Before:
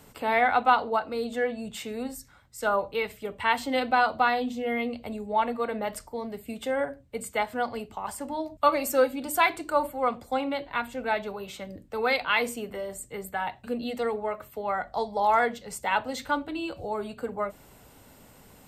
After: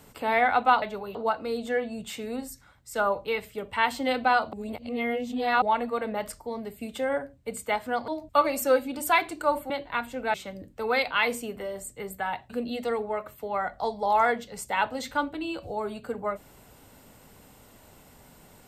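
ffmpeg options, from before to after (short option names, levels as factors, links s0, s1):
-filter_complex "[0:a]asplit=8[s0][s1][s2][s3][s4][s5][s6][s7];[s0]atrim=end=0.822[s8];[s1]atrim=start=11.148:end=11.482[s9];[s2]atrim=start=0.818:end=4.202[s10];[s3]atrim=start=4.198:end=5.292,asetpts=PTS-STARTPTS,areverse[s11];[s4]atrim=start=5.288:end=7.752[s12];[s5]atrim=start=8.358:end=9.982[s13];[s6]atrim=start=10.508:end=11.152[s14];[s7]atrim=start=11.478[s15];[s8][s9]acrossfade=d=0.004:c1=hsin:c2=hsin[s16];[s16][s10]acrossfade=d=0.004:c1=hsin:c2=hsin[s17];[s17][s11]acrossfade=d=0.004:c1=hsin:c2=hsin[s18];[s18][s12]acrossfade=d=0.004:c1=hsin:c2=hsin[s19];[s19][s13]acrossfade=d=0.004:c1=hsin:c2=hsin[s20];[s20][s14]acrossfade=d=0.004:c1=hsin:c2=hsin[s21];[s21][s15]acrossfade=d=0.004:c1=hsin:c2=hsin"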